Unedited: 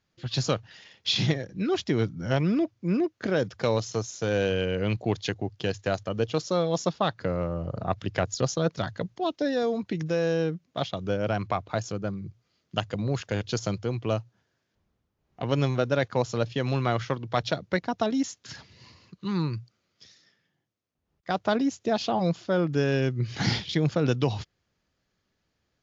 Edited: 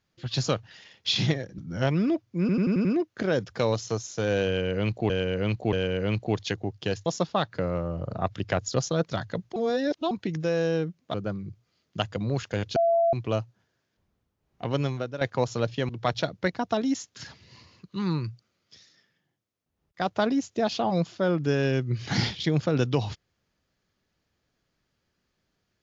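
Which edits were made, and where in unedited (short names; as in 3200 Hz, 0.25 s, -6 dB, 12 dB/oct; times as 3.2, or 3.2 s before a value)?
1.58–2.07 cut
2.89 stutter 0.09 s, 6 plays
4.51–5.14 loop, 3 plays
5.84–6.72 cut
9.22–9.77 reverse
10.8–11.92 cut
13.54–13.91 bleep 674 Hz -18.5 dBFS
15.42–15.99 fade out, to -12.5 dB
16.67–17.18 cut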